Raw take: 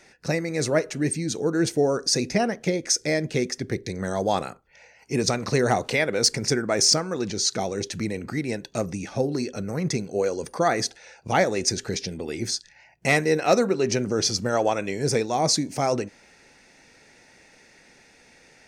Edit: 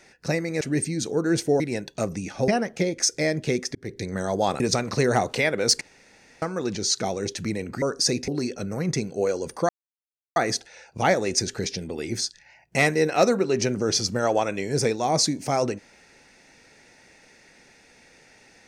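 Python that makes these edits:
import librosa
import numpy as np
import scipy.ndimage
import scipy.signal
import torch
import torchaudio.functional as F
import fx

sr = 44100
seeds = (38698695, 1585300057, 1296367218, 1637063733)

y = fx.edit(x, sr, fx.cut(start_s=0.61, length_s=0.29),
    fx.swap(start_s=1.89, length_s=0.46, other_s=8.37, other_length_s=0.88),
    fx.fade_in_span(start_s=3.62, length_s=0.26),
    fx.cut(start_s=4.47, length_s=0.68),
    fx.room_tone_fill(start_s=6.36, length_s=0.61),
    fx.insert_silence(at_s=10.66, length_s=0.67), tone=tone)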